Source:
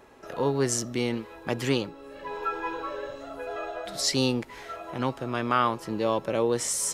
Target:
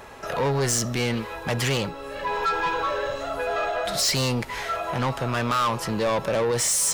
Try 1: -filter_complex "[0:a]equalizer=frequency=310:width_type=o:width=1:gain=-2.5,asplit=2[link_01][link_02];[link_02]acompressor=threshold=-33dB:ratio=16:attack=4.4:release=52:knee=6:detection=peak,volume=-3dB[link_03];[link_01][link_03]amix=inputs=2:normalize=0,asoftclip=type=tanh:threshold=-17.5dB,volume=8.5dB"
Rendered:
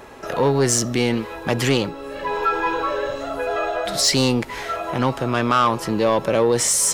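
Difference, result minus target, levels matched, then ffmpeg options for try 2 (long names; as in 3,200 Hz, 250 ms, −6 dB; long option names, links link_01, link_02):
soft clipping: distortion −8 dB; 250 Hz band +3.0 dB
-filter_complex "[0:a]equalizer=frequency=310:width_type=o:width=1:gain=-10,asplit=2[link_01][link_02];[link_02]acompressor=threshold=-33dB:ratio=16:attack=4.4:release=52:knee=6:detection=peak,volume=-3dB[link_03];[link_01][link_03]amix=inputs=2:normalize=0,asoftclip=type=tanh:threshold=-27.5dB,volume=8.5dB"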